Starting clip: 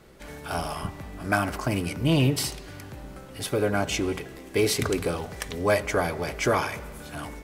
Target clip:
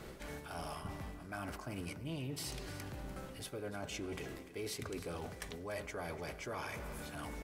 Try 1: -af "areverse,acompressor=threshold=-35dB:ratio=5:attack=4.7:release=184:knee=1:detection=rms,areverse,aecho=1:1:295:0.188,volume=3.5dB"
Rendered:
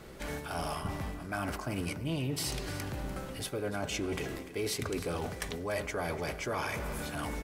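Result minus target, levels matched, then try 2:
downward compressor: peak gain reduction −8 dB
-af "areverse,acompressor=threshold=-45dB:ratio=5:attack=4.7:release=184:knee=1:detection=rms,areverse,aecho=1:1:295:0.188,volume=3.5dB"

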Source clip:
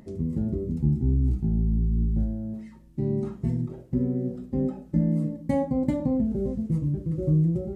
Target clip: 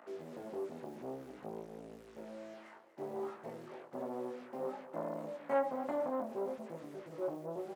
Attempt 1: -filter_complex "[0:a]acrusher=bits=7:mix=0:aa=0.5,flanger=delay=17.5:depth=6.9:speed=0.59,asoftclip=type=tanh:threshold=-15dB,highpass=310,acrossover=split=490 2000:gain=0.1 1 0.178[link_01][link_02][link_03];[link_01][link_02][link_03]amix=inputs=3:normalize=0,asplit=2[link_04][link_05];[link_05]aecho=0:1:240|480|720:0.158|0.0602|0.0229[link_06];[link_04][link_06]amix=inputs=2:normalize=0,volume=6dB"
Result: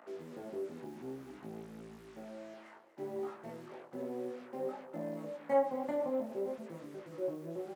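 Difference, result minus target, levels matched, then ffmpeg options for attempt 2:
soft clipping: distortion −12 dB
-filter_complex "[0:a]acrusher=bits=7:mix=0:aa=0.5,flanger=delay=17.5:depth=6.9:speed=0.59,asoftclip=type=tanh:threshold=-23.5dB,highpass=310,acrossover=split=490 2000:gain=0.1 1 0.178[link_01][link_02][link_03];[link_01][link_02][link_03]amix=inputs=3:normalize=0,asplit=2[link_04][link_05];[link_05]aecho=0:1:240|480|720:0.158|0.0602|0.0229[link_06];[link_04][link_06]amix=inputs=2:normalize=0,volume=6dB"

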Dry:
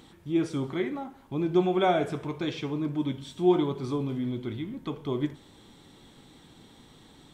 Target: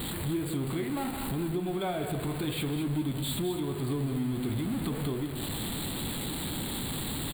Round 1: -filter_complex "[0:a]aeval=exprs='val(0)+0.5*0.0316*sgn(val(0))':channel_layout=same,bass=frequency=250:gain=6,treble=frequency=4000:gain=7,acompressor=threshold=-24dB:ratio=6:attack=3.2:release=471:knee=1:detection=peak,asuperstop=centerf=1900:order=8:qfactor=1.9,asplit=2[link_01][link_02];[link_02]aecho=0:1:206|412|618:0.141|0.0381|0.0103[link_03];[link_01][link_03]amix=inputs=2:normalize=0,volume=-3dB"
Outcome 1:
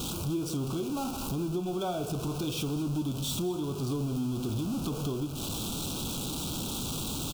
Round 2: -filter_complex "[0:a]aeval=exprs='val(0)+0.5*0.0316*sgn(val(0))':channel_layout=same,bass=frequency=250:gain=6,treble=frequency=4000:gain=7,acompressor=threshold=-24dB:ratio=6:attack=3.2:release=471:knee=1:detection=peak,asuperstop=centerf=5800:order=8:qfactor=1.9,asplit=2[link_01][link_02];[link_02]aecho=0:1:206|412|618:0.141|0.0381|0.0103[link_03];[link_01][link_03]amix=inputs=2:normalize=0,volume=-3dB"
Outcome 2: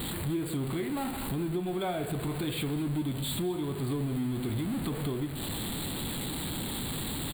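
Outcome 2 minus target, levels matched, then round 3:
echo-to-direct −8 dB
-filter_complex "[0:a]aeval=exprs='val(0)+0.5*0.0316*sgn(val(0))':channel_layout=same,bass=frequency=250:gain=6,treble=frequency=4000:gain=7,acompressor=threshold=-24dB:ratio=6:attack=3.2:release=471:knee=1:detection=peak,asuperstop=centerf=5800:order=8:qfactor=1.9,asplit=2[link_01][link_02];[link_02]aecho=0:1:206|412|618:0.355|0.0958|0.0259[link_03];[link_01][link_03]amix=inputs=2:normalize=0,volume=-3dB"

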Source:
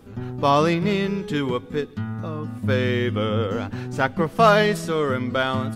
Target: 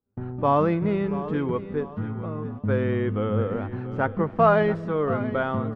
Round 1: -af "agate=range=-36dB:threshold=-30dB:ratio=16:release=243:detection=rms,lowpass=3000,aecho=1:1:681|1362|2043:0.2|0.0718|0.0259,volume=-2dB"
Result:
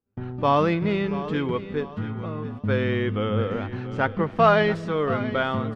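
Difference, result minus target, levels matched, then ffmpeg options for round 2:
4,000 Hz band +10.5 dB
-af "agate=range=-36dB:threshold=-30dB:ratio=16:release=243:detection=rms,lowpass=1400,aecho=1:1:681|1362|2043:0.2|0.0718|0.0259,volume=-2dB"

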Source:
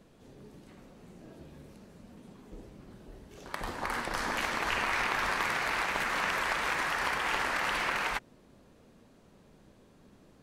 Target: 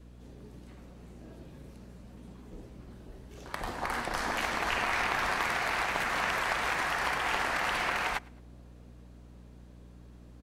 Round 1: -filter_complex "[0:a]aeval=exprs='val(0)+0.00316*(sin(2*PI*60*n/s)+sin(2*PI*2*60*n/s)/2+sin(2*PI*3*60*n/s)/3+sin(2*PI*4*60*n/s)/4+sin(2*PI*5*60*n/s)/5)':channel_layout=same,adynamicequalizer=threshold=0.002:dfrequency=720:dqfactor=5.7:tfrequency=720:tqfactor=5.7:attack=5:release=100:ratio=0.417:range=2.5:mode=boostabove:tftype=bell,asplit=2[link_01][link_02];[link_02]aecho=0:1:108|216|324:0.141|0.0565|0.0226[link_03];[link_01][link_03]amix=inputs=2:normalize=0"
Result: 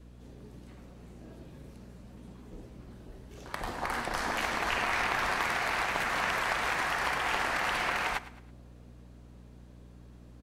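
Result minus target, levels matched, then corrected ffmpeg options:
echo-to-direct +9 dB
-filter_complex "[0:a]aeval=exprs='val(0)+0.00316*(sin(2*PI*60*n/s)+sin(2*PI*2*60*n/s)/2+sin(2*PI*3*60*n/s)/3+sin(2*PI*4*60*n/s)/4+sin(2*PI*5*60*n/s)/5)':channel_layout=same,adynamicequalizer=threshold=0.002:dfrequency=720:dqfactor=5.7:tfrequency=720:tqfactor=5.7:attack=5:release=100:ratio=0.417:range=2.5:mode=boostabove:tftype=bell,asplit=2[link_01][link_02];[link_02]aecho=0:1:108|216:0.0501|0.02[link_03];[link_01][link_03]amix=inputs=2:normalize=0"

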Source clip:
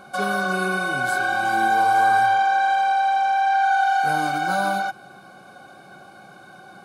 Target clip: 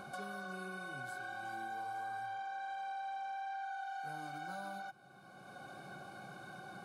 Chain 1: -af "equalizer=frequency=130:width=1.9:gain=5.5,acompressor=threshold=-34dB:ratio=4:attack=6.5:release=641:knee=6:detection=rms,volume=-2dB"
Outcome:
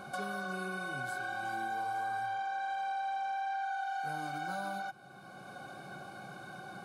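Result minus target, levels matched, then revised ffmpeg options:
downward compressor: peak gain reduction −6.5 dB
-af "equalizer=frequency=130:width=1.9:gain=5.5,acompressor=threshold=-42.5dB:ratio=4:attack=6.5:release=641:knee=6:detection=rms,volume=-2dB"

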